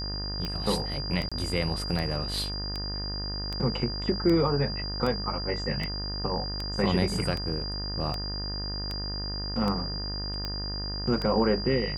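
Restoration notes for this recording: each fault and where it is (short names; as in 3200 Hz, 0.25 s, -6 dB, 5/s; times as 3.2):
buzz 50 Hz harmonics 38 -35 dBFS
tick 78 rpm -18 dBFS
tone 4800 Hz -34 dBFS
1.29–1.32 gap 26 ms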